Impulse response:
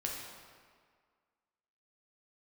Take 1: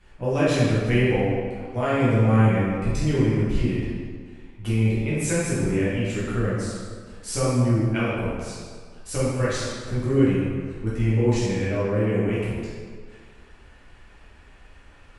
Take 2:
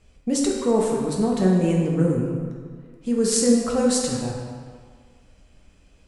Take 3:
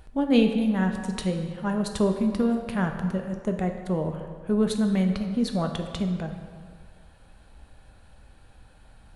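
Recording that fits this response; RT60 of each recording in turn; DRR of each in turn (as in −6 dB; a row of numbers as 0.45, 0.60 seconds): 2; 1.8, 1.8, 1.8 seconds; −10.0, −2.0, 4.5 decibels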